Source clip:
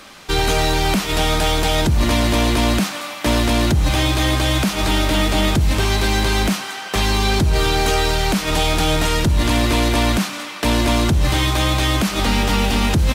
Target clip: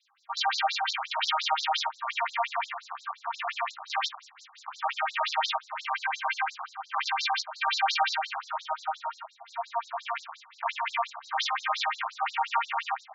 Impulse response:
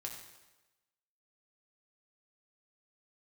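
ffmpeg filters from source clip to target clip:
-filter_complex "[0:a]asettb=1/sr,asplit=3[a][b][c];[a]atrim=end=4.094[d];[b]atrim=start=4.09:end=4.68,asetpts=PTS-STARTPTS,afade=t=in:d=0.004:c=qsin,afade=t=out:st=0.586:d=0.004:c=qsin,aeval=exprs='0.0531*(abs(mod(val(0)/0.0531+3,4)-2)-1)':c=same[e];[c]atrim=start=4.676[f];[d][e]acrossfade=d=0.004:c1=hsin:c2=qsin[g];[g][f]acrossfade=d=0.004:c1=qsin:c2=hsin,adynamicequalizer=threshold=0.0251:dfrequency=180:dqfactor=1.9:tfrequency=180:tqfactor=1.9:attack=5:release=100:ratio=0.375:range=2:mode=cutabove:tftype=bell,asettb=1/sr,asplit=3[h][i][j];[h]atrim=end=2.684[k];[i]atrim=start=2.68:end=3.31,asetpts=PTS-STARTPTS,afade=t=in:d=0.004:c=qsin,afade=t=out:st=0.626:d=0.004:c=qsin,acompressor=threshold=-20dB:ratio=3[l];[j]atrim=start=3.306[m];[k][l]acrossfade=d=0.004:c1=hsin:c2=qsin[n];[n][m]acrossfade=d=0.004:c1=qsin:c2=hsin,asettb=1/sr,asplit=3[o][p][q];[o]atrim=end=8.604[r];[p]atrim=start=8.6:end=9.79,asetpts=PTS-STARTPTS,afade=t=in:d=0.004:c=qsin,afade=t=out:st=1.186:d=0.004:c=qsin,equalizer=f=130:t=o:w=1.3:g=12[s];[q]atrim=start=9.786[t];[r][s]acrossfade=d=0.004:c1=hsin:c2=qsin[u];[u][t]acrossfade=d=0.004:c1=qsin:c2=hsin,dynaudnorm=f=150:g=3:m=8.5dB[v];[1:a]atrim=start_sample=2205,afade=t=out:st=0.15:d=0.01,atrim=end_sample=7056[w];[v][w]afir=irnorm=-1:irlink=0,afwtdn=0.1,afftfilt=real='re*between(b*sr/1024,890*pow(5500/890,0.5+0.5*sin(2*PI*5.7*pts/sr))/1.41,890*pow(5500/890,0.5+0.5*sin(2*PI*5.7*pts/sr))*1.41)':imag='im*between(b*sr/1024,890*pow(5500/890,0.5+0.5*sin(2*PI*5.7*pts/sr))/1.41,890*pow(5500/890,0.5+0.5*sin(2*PI*5.7*pts/sr))*1.41)':win_size=1024:overlap=0.75,volume=-4dB"

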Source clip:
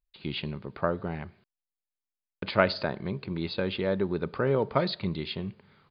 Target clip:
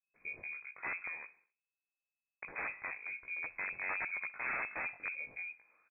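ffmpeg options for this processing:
-filter_complex "[0:a]flanger=delay=17:depth=4.3:speed=0.91,aeval=exprs='(mod(15.8*val(0)+1,2)-1)/15.8':c=same,asplit=2[a][b];[b]aecho=0:1:64|128|192|256:0.0794|0.0429|0.0232|0.0125[c];[a][c]amix=inputs=2:normalize=0,lowpass=f=2.2k:t=q:w=0.5098,lowpass=f=2.2k:t=q:w=0.6013,lowpass=f=2.2k:t=q:w=0.9,lowpass=f=2.2k:t=q:w=2.563,afreqshift=-2600,volume=-7dB"

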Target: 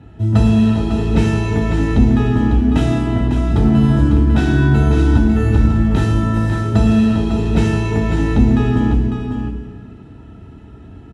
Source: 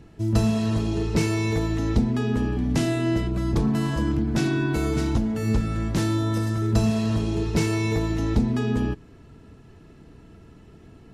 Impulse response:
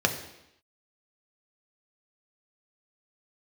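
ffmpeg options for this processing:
-filter_complex "[0:a]asettb=1/sr,asplit=3[a][b][c];[a]atrim=end=2.954[d];[b]atrim=start=2.95:end=3.5,asetpts=PTS-STARTPTS,afade=t=in:d=0.004:c=qsin,afade=t=out:st=0.546:d=0.004:c=qsin,lowpass=4.1k[e];[c]atrim=start=3.496[f];[d][e]acrossfade=d=0.004:c1=hsin:c2=qsin[g];[g][f]acrossfade=d=0.004:c1=qsin:c2=hsin,aecho=1:1:550:0.447[h];[1:a]atrim=start_sample=2205,asetrate=23373,aresample=44100[i];[h][i]afir=irnorm=-1:irlink=0,volume=-10.5dB"

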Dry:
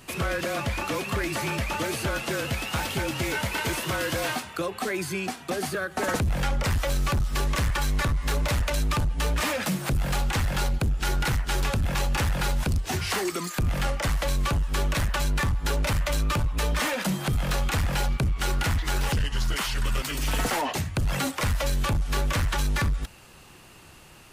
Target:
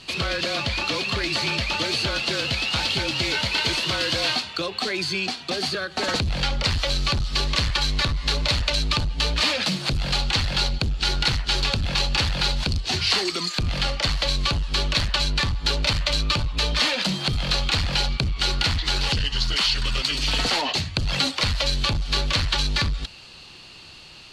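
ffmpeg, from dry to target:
-af "aexciter=amount=1.8:drive=2.5:freq=2.5k,lowpass=f=4.4k:t=q:w=9"

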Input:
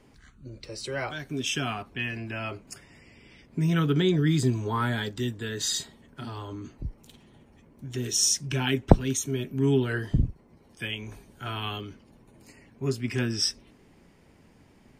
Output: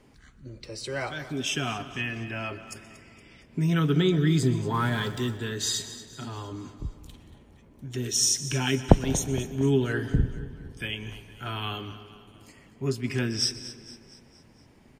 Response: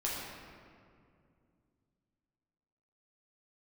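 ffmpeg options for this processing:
-filter_complex "[0:a]asettb=1/sr,asplit=3[a][b][c];[a]atrim=end=4.744[d];[b]atrim=start=4.74:end=5.37,asetpts=PTS-STARTPTS,afade=t=in:d=0.004:c=qsin,afade=t=out:st=0.626:d=0.004:c=qsin,aeval=exprs='val(0)+0.5*0.00794*sgn(val(0))':c=same[e];[c]atrim=start=5.366[f];[d][e]acrossfade=d=0.004:c1=hsin:c2=qsin[g];[g][f]acrossfade=d=0.004:c1=qsin:c2=hsin,aecho=1:1:232|464|696|928|1160:0.168|0.0856|0.0437|0.0223|0.0114,asplit=2[h][i];[1:a]atrim=start_sample=2205,asetrate=57330,aresample=44100,adelay=122[j];[i][j]afir=irnorm=-1:irlink=0,volume=-17.5dB[k];[h][k]amix=inputs=2:normalize=0"

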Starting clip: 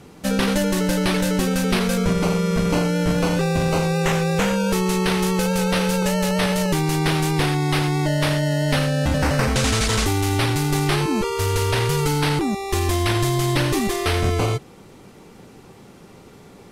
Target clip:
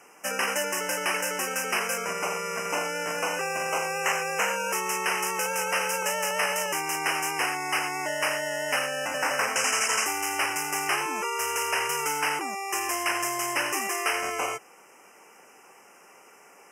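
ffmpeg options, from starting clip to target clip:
-af "highpass=790,acontrast=27,asuperstop=centerf=3900:order=20:qfactor=2,volume=-5dB"

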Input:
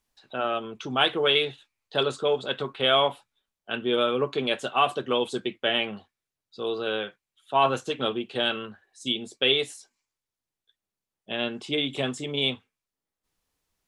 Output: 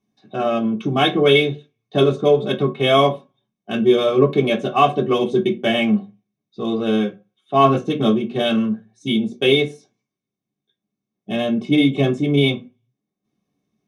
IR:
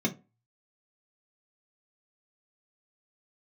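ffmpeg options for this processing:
-filter_complex "[0:a]highshelf=f=9.4k:g=-6.5,asplit=2[a][b];[b]adynamicsmooth=sensitivity=7.5:basefreq=1.2k,volume=-2dB[c];[a][c]amix=inputs=2:normalize=0[d];[1:a]atrim=start_sample=2205[e];[d][e]afir=irnorm=-1:irlink=0,volume=-6.5dB"

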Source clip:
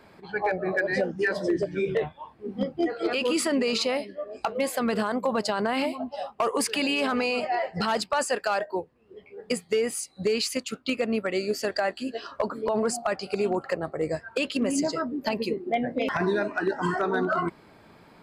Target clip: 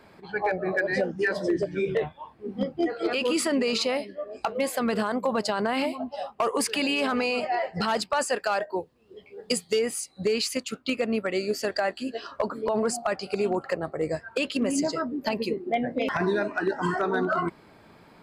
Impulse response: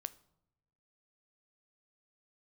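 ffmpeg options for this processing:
-filter_complex "[0:a]asettb=1/sr,asplit=3[a][b][c];[a]atrim=end=8.804[d];[b]atrim=start=8.8:end=9.79,asetpts=PTS-STARTPTS,afade=t=in:d=0.004:c=qsin,afade=t=out:st=0.986:d=0.004:c=qsin,highshelf=f=2.8k:t=q:w=1.5:g=6[e];[c]atrim=start=9.786[f];[d][e]acrossfade=d=0.004:c1=hsin:c2=qsin[g];[g][f]acrossfade=d=0.004:c1=qsin:c2=hsin"

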